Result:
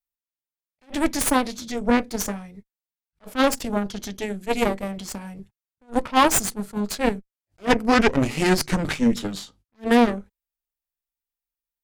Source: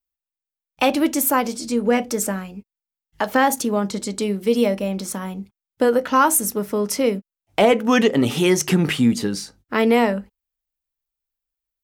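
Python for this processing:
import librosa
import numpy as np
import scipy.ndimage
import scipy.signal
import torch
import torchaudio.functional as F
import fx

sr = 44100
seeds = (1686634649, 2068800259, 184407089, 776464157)

y = fx.cheby_harmonics(x, sr, harmonics=(3, 4), levels_db=(-16, -11), full_scale_db=-5.5)
y = fx.formant_shift(y, sr, semitones=-4)
y = fx.attack_slew(y, sr, db_per_s=370.0)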